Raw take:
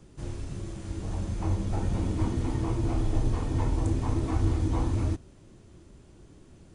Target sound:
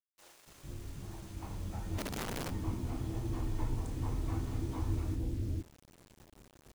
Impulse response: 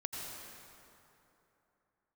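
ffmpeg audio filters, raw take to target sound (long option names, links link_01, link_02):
-filter_complex "[0:a]acrossover=split=550[link_01][link_02];[link_01]adelay=460[link_03];[link_03][link_02]amix=inputs=2:normalize=0,acrusher=bits=7:mix=0:aa=0.000001,asplit=3[link_04][link_05][link_06];[link_04]afade=type=out:start_time=1.97:duration=0.02[link_07];[link_05]aeval=exprs='(mod(16.8*val(0)+1,2)-1)/16.8':channel_layout=same,afade=type=in:start_time=1.97:duration=0.02,afade=type=out:start_time=2.49:duration=0.02[link_08];[link_06]afade=type=in:start_time=2.49:duration=0.02[link_09];[link_07][link_08][link_09]amix=inputs=3:normalize=0,volume=-8.5dB"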